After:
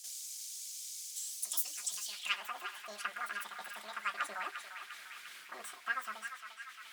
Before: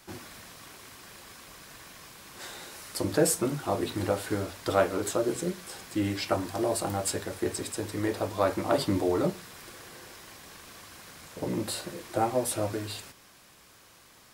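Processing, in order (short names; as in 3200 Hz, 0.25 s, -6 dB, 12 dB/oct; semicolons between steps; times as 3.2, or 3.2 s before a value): passive tone stack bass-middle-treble 5-5-5; on a send: narrowing echo 0.723 s, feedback 61%, band-pass 1400 Hz, level -6 dB; on the sum: band-pass sweep 3100 Hz -> 730 Hz, 4.19–5.03; reverse; upward compressor, threshold -54 dBFS; reverse; wide varispeed 2.07×; high shelf 5600 Hz +7 dB; gain +11.5 dB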